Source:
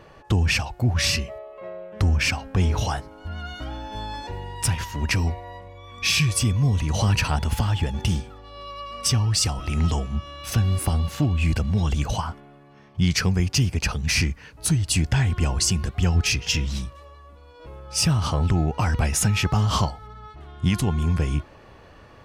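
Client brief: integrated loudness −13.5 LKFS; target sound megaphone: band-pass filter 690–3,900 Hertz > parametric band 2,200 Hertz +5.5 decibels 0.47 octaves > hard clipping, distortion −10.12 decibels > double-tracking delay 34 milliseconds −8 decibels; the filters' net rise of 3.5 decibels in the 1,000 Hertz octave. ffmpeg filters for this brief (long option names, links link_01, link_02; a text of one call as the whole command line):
ffmpeg -i in.wav -filter_complex "[0:a]highpass=690,lowpass=3900,equalizer=frequency=1000:width_type=o:gain=5.5,equalizer=frequency=2200:width_type=o:width=0.47:gain=5.5,asoftclip=type=hard:threshold=-21.5dB,asplit=2[link_01][link_02];[link_02]adelay=34,volume=-8dB[link_03];[link_01][link_03]amix=inputs=2:normalize=0,volume=16dB" out.wav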